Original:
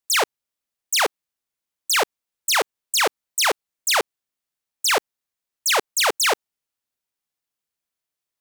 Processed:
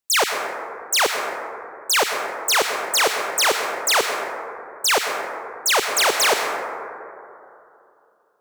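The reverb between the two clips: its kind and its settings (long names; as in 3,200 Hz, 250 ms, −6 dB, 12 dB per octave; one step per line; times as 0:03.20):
dense smooth reverb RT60 2.8 s, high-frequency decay 0.25×, pre-delay 80 ms, DRR 3 dB
level +1 dB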